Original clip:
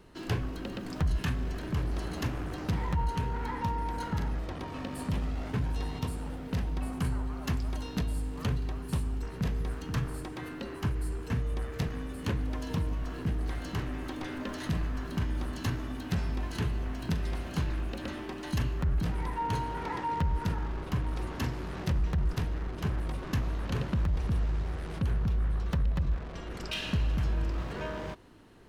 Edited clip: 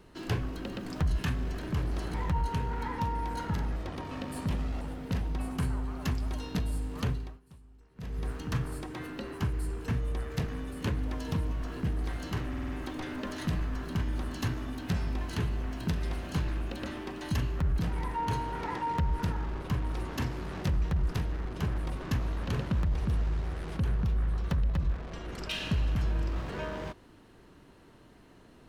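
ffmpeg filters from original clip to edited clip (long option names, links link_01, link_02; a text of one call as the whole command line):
ffmpeg -i in.wav -filter_complex "[0:a]asplit=9[link_01][link_02][link_03][link_04][link_05][link_06][link_07][link_08][link_09];[link_01]atrim=end=2.142[link_10];[link_02]atrim=start=2.768:end=5.442[link_11];[link_03]atrim=start=6.228:end=8.82,asetpts=PTS-STARTPTS,afade=type=out:start_time=2.272:duration=0.32:silence=0.0707946[link_12];[link_04]atrim=start=8.82:end=9.37,asetpts=PTS-STARTPTS,volume=-23dB[link_13];[link_05]atrim=start=9.37:end=13.962,asetpts=PTS-STARTPTS,afade=type=in:duration=0.32:silence=0.0707946[link_14];[link_06]atrim=start=13.908:end=13.962[link_15];[link_07]atrim=start=13.908:end=13.962[link_16];[link_08]atrim=start=13.908:end=13.962[link_17];[link_09]atrim=start=13.908[link_18];[link_10][link_11]acrossfade=duration=0.004:curve1=hsin:curve2=hsin[link_19];[link_12][link_13][link_14]concat=n=3:v=0:a=1[link_20];[link_19][link_20]acrossfade=duration=0.004:curve1=hsin:curve2=hsin[link_21];[link_21][link_15]acrossfade=duration=0.004:curve1=hsin:curve2=hsin[link_22];[link_22][link_16]acrossfade=duration=0.004:curve1=hsin:curve2=hsin[link_23];[link_23][link_17]acrossfade=duration=0.004:curve1=hsin:curve2=hsin[link_24];[link_24][link_18]acrossfade=duration=0.004:curve1=hsin:curve2=hsin" out.wav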